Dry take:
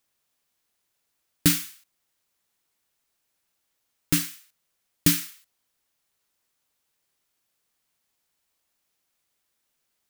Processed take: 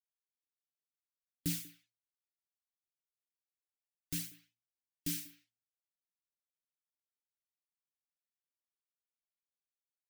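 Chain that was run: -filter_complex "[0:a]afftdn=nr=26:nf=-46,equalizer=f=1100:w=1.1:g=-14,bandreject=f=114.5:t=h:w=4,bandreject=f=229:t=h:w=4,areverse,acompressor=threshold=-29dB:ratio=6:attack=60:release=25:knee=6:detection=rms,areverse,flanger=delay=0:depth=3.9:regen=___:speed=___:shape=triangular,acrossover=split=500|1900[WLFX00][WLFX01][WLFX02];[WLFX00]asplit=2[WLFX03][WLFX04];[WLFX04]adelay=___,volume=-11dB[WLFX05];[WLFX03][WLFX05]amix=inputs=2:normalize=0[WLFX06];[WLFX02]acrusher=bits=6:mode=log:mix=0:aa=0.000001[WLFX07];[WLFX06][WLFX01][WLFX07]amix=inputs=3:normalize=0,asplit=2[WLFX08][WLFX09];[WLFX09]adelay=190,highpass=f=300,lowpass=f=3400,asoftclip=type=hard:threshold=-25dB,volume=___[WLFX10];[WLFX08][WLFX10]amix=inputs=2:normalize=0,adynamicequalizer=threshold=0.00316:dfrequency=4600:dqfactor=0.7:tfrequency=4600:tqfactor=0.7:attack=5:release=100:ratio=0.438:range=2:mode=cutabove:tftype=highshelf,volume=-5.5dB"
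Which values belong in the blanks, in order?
53, 0.68, 23, -17dB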